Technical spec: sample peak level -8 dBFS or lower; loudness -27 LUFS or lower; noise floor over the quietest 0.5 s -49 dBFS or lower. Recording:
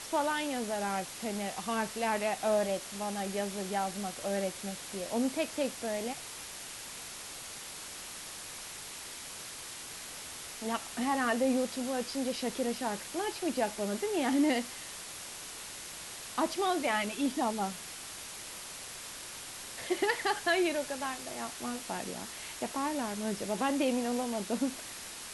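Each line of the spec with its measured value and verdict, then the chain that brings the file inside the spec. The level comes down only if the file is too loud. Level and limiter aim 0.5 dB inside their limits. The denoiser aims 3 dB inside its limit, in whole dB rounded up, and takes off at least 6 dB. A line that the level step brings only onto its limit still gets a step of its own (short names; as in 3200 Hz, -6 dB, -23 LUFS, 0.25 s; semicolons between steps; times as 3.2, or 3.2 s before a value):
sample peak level -16.5 dBFS: OK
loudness -34.5 LUFS: OK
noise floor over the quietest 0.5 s -44 dBFS: fail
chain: denoiser 8 dB, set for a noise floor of -44 dBFS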